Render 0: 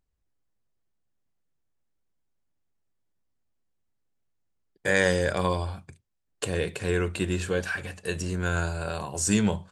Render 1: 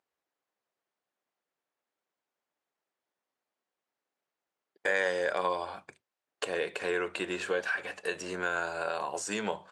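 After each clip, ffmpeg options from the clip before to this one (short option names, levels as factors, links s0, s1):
-af "highpass=540,acompressor=threshold=0.0141:ratio=2,aemphasis=mode=reproduction:type=75kf,volume=2.24"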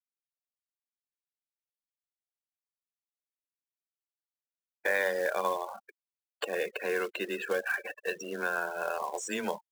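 -af "afreqshift=15,afftfilt=real='re*gte(hypot(re,im),0.0178)':imag='im*gte(hypot(re,im),0.0178)':win_size=1024:overlap=0.75,acrusher=bits=4:mode=log:mix=0:aa=0.000001"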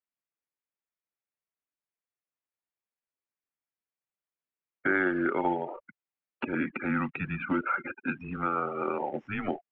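-af "highpass=f=310:t=q:w=0.5412,highpass=f=310:t=q:w=1.307,lowpass=f=2800:t=q:w=0.5176,lowpass=f=2800:t=q:w=0.7071,lowpass=f=2800:t=q:w=1.932,afreqshift=-210,volume=1.33"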